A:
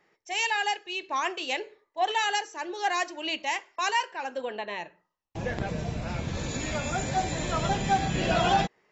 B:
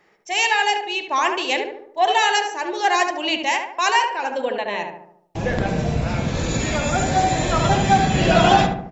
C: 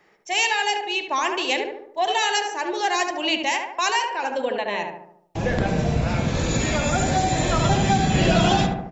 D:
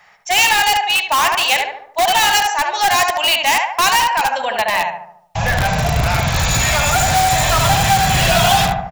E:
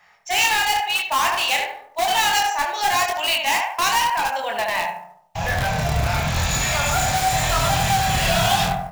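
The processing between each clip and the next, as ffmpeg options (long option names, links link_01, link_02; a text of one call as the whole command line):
ffmpeg -i in.wav -filter_complex "[0:a]asplit=2[link_01][link_02];[link_02]adelay=73,lowpass=frequency=1400:poles=1,volume=-3.5dB,asplit=2[link_03][link_04];[link_04]adelay=73,lowpass=frequency=1400:poles=1,volume=0.54,asplit=2[link_05][link_06];[link_06]adelay=73,lowpass=frequency=1400:poles=1,volume=0.54,asplit=2[link_07][link_08];[link_08]adelay=73,lowpass=frequency=1400:poles=1,volume=0.54,asplit=2[link_09][link_10];[link_10]adelay=73,lowpass=frequency=1400:poles=1,volume=0.54,asplit=2[link_11][link_12];[link_12]adelay=73,lowpass=frequency=1400:poles=1,volume=0.54,asplit=2[link_13][link_14];[link_14]adelay=73,lowpass=frequency=1400:poles=1,volume=0.54[link_15];[link_01][link_03][link_05][link_07][link_09][link_11][link_13][link_15]amix=inputs=8:normalize=0,volume=8dB" out.wav
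ffmpeg -i in.wav -filter_complex "[0:a]acrossover=split=360|3000[link_01][link_02][link_03];[link_02]acompressor=threshold=-22dB:ratio=3[link_04];[link_01][link_04][link_03]amix=inputs=3:normalize=0" out.wav
ffmpeg -i in.wav -filter_complex "[0:a]firequalizer=gain_entry='entry(110,0);entry(330,-24);entry(690,3)':delay=0.05:min_phase=1,asplit=2[link_01][link_02];[link_02]aeval=exprs='(mod(7.08*val(0)+1,2)-1)/7.08':channel_layout=same,volume=-4.5dB[link_03];[link_01][link_03]amix=inputs=2:normalize=0,volume=4.5dB" out.wav
ffmpeg -i in.wav -af "flanger=delay=22.5:depth=6.3:speed=0.91,acrusher=bits=6:mode=log:mix=0:aa=0.000001,volume=-2.5dB" out.wav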